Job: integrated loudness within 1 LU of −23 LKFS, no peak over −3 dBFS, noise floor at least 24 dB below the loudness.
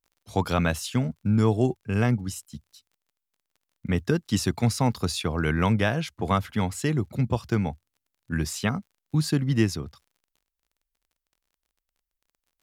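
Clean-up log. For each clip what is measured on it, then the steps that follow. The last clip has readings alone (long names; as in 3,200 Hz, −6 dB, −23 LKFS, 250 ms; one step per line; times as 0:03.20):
crackle rate 32 per second; integrated loudness −26.0 LKFS; sample peak −8.5 dBFS; target loudness −23.0 LKFS
→ click removal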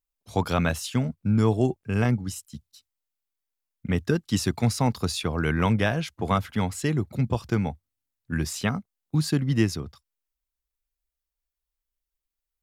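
crackle rate 0 per second; integrated loudness −26.0 LKFS; sample peak −8.5 dBFS; target loudness −23.0 LKFS
→ level +3 dB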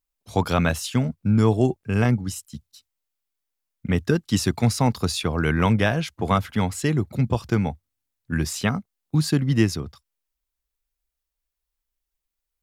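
integrated loudness −23.0 LKFS; sample peak −5.5 dBFS; background noise floor −84 dBFS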